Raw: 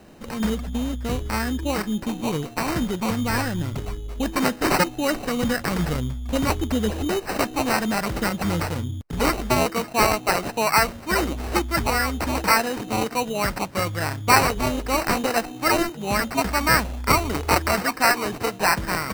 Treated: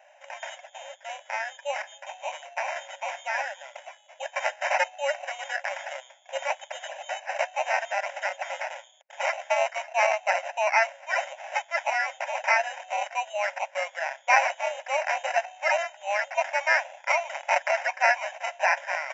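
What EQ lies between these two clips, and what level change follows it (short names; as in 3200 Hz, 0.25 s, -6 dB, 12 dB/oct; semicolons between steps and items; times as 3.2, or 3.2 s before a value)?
brick-wall FIR band-pass 530–7400 Hz; fixed phaser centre 1200 Hz, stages 6; 0.0 dB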